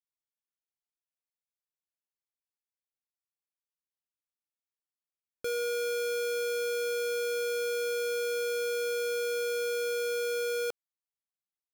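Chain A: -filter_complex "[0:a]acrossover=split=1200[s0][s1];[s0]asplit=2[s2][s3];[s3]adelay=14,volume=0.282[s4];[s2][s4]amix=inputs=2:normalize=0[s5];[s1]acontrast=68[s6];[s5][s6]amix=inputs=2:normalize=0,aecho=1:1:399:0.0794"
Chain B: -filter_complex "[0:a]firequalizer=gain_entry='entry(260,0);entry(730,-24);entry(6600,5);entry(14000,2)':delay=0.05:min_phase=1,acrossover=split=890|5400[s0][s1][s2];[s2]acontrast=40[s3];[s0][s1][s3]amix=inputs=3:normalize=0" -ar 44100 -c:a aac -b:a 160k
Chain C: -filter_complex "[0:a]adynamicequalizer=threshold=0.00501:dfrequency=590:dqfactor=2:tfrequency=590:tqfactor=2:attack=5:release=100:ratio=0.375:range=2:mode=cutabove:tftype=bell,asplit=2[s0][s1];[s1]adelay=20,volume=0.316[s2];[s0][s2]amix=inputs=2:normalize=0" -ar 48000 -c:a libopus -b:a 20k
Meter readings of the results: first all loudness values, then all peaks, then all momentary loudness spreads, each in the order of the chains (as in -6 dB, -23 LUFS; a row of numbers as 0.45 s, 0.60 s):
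-28.5 LUFS, -34.0 LUFS, -34.0 LUFS; -22.5 dBFS, -23.5 dBFS, -24.5 dBFS; 1 LU, 1 LU, 1 LU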